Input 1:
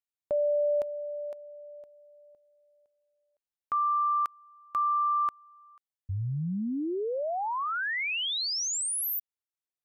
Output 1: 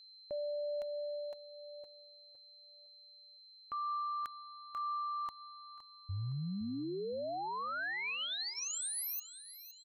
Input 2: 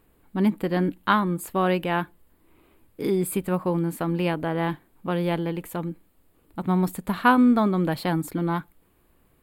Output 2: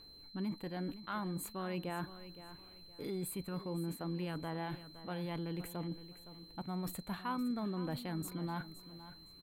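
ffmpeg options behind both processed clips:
-af "aphaser=in_gain=1:out_gain=1:delay=1.7:decay=0.33:speed=0.51:type=triangular,areverse,acompressor=threshold=0.0251:ratio=4:attack=0.53:release=122:knee=1:detection=rms,areverse,aeval=exprs='val(0)+0.00316*sin(2*PI*4100*n/s)':c=same,bandreject=f=5100:w=11,aecho=1:1:515|1030|1545:0.2|0.0579|0.0168,volume=0.596"

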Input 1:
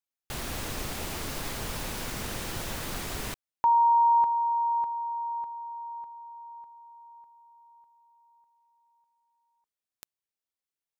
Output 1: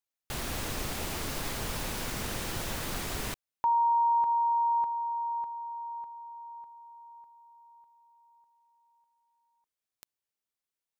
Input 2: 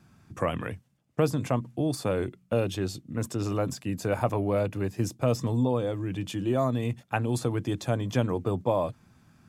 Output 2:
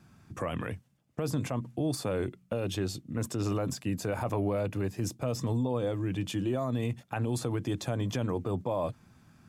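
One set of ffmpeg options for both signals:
-af "alimiter=limit=0.0841:level=0:latency=1:release=52"

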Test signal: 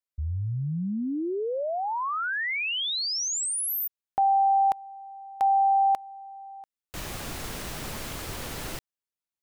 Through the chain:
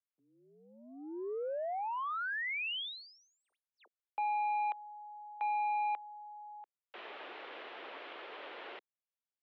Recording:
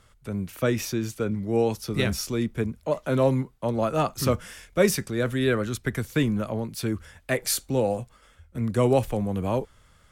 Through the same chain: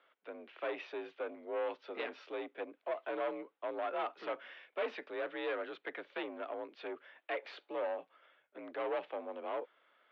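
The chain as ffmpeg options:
-af "asoftclip=type=tanh:threshold=0.0596,highpass=f=320:t=q:w=0.5412,highpass=f=320:t=q:w=1.307,lowpass=f=3300:t=q:w=0.5176,lowpass=f=3300:t=q:w=0.7071,lowpass=f=3300:t=q:w=1.932,afreqshift=53,volume=0.473"

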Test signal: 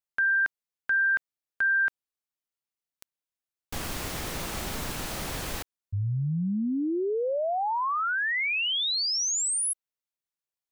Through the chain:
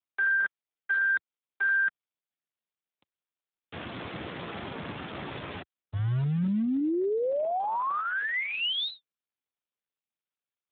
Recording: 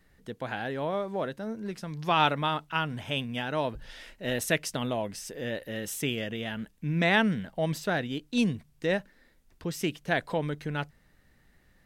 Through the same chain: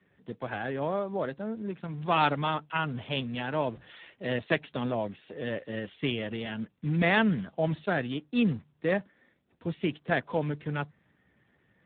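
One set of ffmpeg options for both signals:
-filter_complex "[0:a]acrossover=split=170|1300[s0][s1][s2];[s0]acrusher=bits=3:mode=log:mix=0:aa=0.000001[s3];[s3][s1][s2]amix=inputs=3:normalize=0" -ar 8000 -c:a libspeex -b:a 8k

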